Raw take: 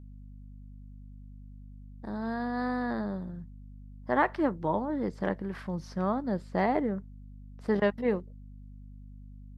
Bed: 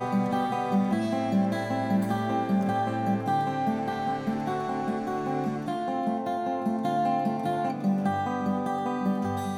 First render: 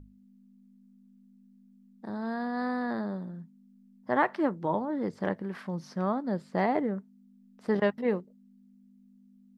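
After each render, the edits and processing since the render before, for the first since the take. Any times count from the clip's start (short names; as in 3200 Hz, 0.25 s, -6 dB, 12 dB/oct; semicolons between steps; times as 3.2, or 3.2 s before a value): notches 50/100/150 Hz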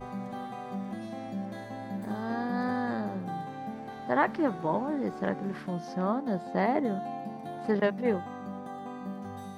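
add bed -11.5 dB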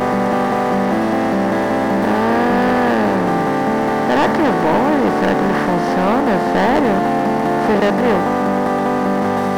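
per-bin compression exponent 0.4; sample leveller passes 3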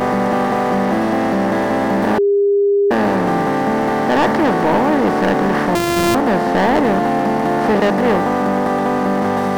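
2.18–2.91 bleep 403 Hz -10.5 dBFS; 5.75–6.15 sample sorter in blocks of 128 samples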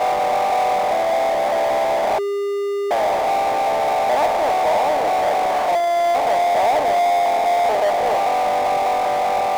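ladder band-pass 740 Hz, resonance 70%; power-law curve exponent 0.5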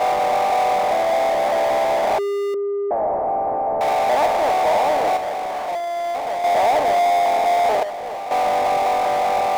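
2.54–3.81 Bessel low-pass 810 Hz, order 4; 5.17–6.44 gain -6.5 dB; 7.83–8.31 gain -10 dB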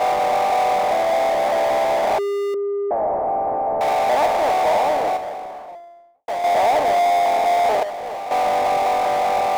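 4.68–6.28 studio fade out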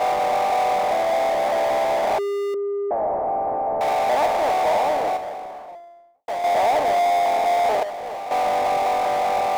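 gain -2 dB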